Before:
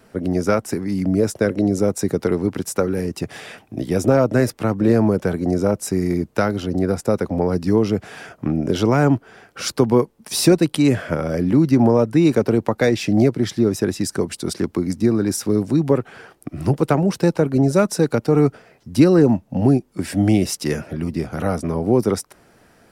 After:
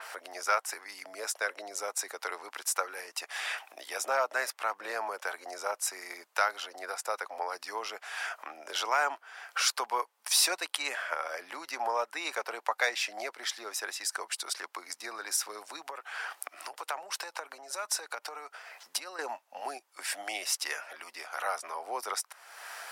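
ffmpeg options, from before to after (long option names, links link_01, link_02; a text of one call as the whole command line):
ffmpeg -i in.wav -filter_complex "[0:a]asettb=1/sr,asplit=3[link_01][link_02][link_03];[link_01]atrim=end=15.824[link_04];[link_02]atrim=start=15.82:end=19.19,asetpts=PTS-STARTPTS,afade=type=in:duration=0.004:curve=qsin,afade=type=out:start_time=3.366:duration=0.004:curve=qsin,acompressor=threshold=-21dB:ratio=5:attack=3.2:release=140:knee=1:detection=peak[link_05];[link_03]atrim=start=19.186[link_06];[link_04][link_05]acrossfade=duration=0.004:curve1=hsin:curve2=qsin[link_07];[link_07][link_06]acrossfade=duration=0.004:curve1=qsin:curve2=hsin,acompressor=mode=upward:threshold=-21dB:ratio=2.5,highpass=frequency=830:width=0.5412,highpass=frequency=830:width=1.3066,adynamicequalizer=threshold=0.00891:dfrequency=3200:dqfactor=0.7:tfrequency=3200:tqfactor=0.7:attack=5:release=100:ratio=0.375:range=2:mode=cutabove:tftype=highshelf,volume=-2dB" out.wav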